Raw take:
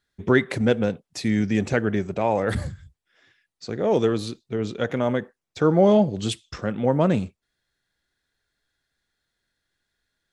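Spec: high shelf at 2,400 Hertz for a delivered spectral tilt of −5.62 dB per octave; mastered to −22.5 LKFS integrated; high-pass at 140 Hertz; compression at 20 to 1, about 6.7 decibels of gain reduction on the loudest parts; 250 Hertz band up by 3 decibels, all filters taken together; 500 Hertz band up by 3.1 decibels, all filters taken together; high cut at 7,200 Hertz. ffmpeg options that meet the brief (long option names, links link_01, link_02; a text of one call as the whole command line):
ffmpeg -i in.wav -af "highpass=140,lowpass=7200,equalizer=frequency=250:width_type=o:gain=4,equalizer=frequency=500:width_type=o:gain=3,highshelf=frequency=2400:gain=-6.5,acompressor=threshold=-16dB:ratio=20,volume=1.5dB" out.wav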